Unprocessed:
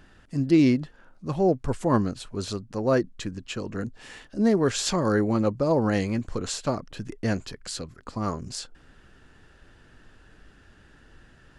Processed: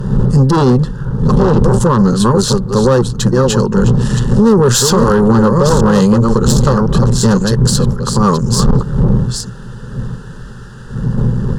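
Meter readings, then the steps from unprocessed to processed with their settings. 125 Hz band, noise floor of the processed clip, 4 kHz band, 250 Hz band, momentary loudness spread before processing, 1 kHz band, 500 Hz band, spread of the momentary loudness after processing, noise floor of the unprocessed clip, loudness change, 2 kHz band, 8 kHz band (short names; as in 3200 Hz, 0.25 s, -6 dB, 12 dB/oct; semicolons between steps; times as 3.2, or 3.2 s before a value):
+20.5 dB, -29 dBFS, +15.0 dB, +14.0 dB, 14 LU, +15.5 dB, +14.0 dB, 10 LU, -56 dBFS, +14.5 dB, +11.0 dB, +17.5 dB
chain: reverse delay 0.528 s, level -7.5 dB; wind noise 140 Hz -29 dBFS; bell 120 Hz +12.5 dB 0.25 oct; tube stage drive 22 dB, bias 0.55; fixed phaser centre 450 Hz, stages 8; maximiser +25 dB; gain -1 dB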